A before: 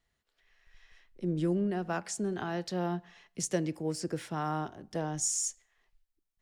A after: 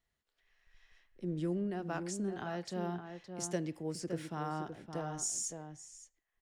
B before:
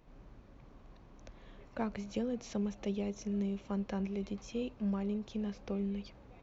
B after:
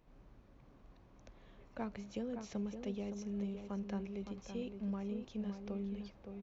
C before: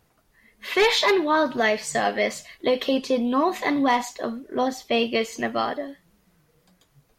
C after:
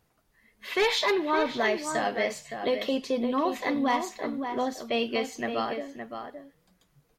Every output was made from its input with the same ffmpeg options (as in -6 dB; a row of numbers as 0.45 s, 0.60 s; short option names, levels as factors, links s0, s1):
-filter_complex "[0:a]asplit=2[s0][s1];[s1]adelay=565.6,volume=0.447,highshelf=f=4000:g=-12.7[s2];[s0][s2]amix=inputs=2:normalize=0,volume=0.531"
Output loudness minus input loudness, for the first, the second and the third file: -5.0 LU, -5.0 LU, -5.0 LU